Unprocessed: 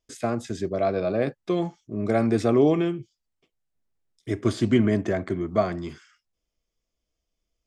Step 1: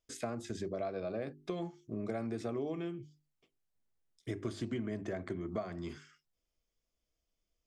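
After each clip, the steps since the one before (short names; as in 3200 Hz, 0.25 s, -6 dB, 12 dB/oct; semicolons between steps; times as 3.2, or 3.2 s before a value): notches 50/100/150/200/250/300/350/400 Hz; compressor 6:1, threshold -31 dBFS, peak gain reduction 15.5 dB; gain -4 dB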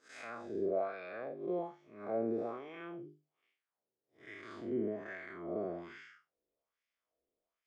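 time blur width 0.153 s; LFO band-pass sine 1.2 Hz 400–2100 Hz; gain +11 dB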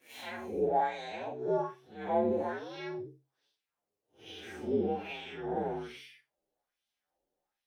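inharmonic rescaling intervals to 121%; gain +7.5 dB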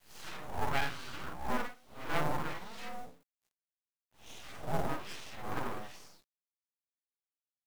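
self-modulated delay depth 0.28 ms; full-wave rectifier; companded quantiser 6-bit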